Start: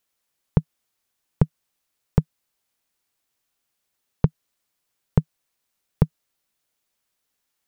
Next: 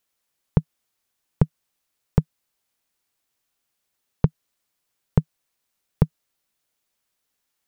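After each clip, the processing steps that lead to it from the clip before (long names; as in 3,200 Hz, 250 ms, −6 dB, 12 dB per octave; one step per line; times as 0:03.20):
no processing that can be heard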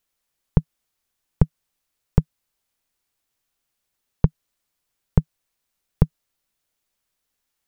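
low-shelf EQ 62 Hz +11 dB
level −1 dB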